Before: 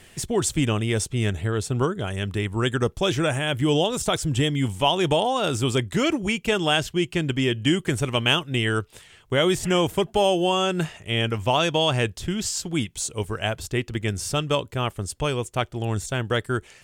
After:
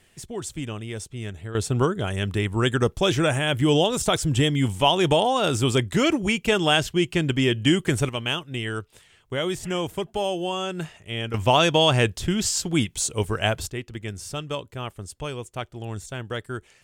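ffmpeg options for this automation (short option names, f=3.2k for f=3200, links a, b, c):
-af "asetnsamples=n=441:p=0,asendcmd='1.55 volume volume 1.5dB;8.09 volume volume -6dB;11.34 volume volume 3dB;13.7 volume volume -7dB',volume=-9.5dB"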